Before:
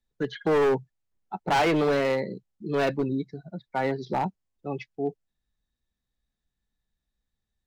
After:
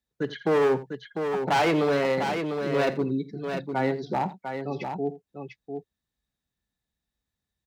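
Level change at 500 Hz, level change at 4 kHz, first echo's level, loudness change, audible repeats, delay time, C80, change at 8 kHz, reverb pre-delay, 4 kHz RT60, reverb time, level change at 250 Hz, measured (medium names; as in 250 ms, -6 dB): +1.0 dB, +1.0 dB, -20.0 dB, +0.5 dB, 3, 49 ms, no reverb, no reading, no reverb, no reverb, no reverb, +1.0 dB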